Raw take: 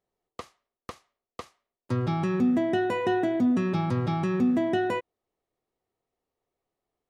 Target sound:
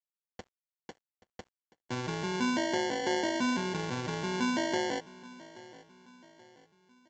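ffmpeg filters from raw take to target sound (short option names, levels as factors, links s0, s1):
-af "equalizer=f=2700:w=1.5:g=-3.5,acrusher=samples=35:mix=1:aa=0.000001,highpass=f=320:p=1,aresample=16000,aeval=exprs='sgn(val(0))*max(abs(val(0))-0.00141,0)':c=same,aresample=44100,aecho=1:1:829|1658|2487:0.106|0.0466|0.0205,volume=0.708"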